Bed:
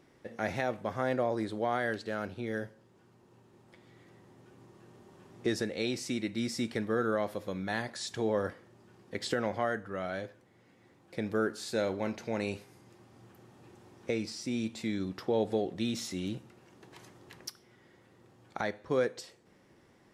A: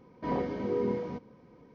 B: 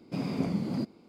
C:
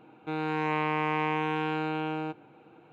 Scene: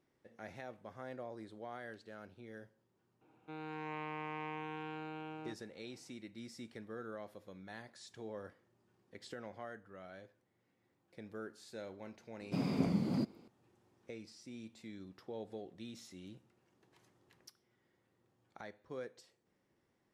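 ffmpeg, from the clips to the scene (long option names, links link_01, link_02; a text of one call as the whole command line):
ffmpeg -i bed.wav -i cue0.wav -i cue1.wav -i cue2.wav -filter_complex "[0:a]volume=-16dB[link_01];[3:a]atrim=end=2.92,asetpts=PTS-STARTPTS,volume=-14.5dB,afade=type=in:duration=0.004:curve=hsin,afade=type=out:start_time=2.916:duration=0.004:curve=hsin,adelay=141561S[link_02];[2:a]atrim=end=1.08,asetpts=PTS-STARTPTS,volume=-3dB,afade=type=in:duration=0.004:curve=hsin,afade=type=out:start_time=1.076:duration=0.004:curve=hsin,adelay=12400[link_03];[link_01][link_02][link_03]amix=inputs=3:normalize=0" out.wav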